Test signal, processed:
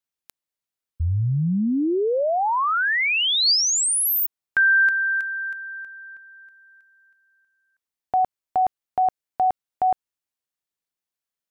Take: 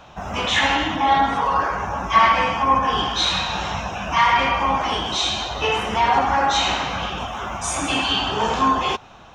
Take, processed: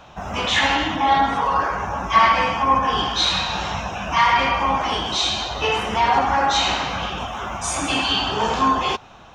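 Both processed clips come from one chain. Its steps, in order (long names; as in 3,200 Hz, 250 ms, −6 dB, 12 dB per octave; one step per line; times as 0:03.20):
dynamic equaliser 4,600 Hz, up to +5 dB, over −43 dBFS, Q 5.5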